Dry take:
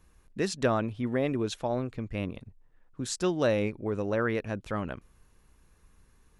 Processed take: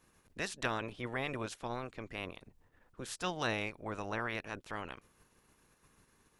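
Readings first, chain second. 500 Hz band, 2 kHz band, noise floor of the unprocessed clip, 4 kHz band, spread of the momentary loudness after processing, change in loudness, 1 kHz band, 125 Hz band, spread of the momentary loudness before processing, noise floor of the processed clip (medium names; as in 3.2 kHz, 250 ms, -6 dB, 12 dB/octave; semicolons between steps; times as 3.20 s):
-12.0 dB, -1.5 dB, -63 dBFS, -3.0 dB, 12 LU, -8.5 dB, -4.0 dB, -11.0 dB, 11 LU, -71 dBFS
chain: spectral peaks clipped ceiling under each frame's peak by 20 dB; trim -9 dB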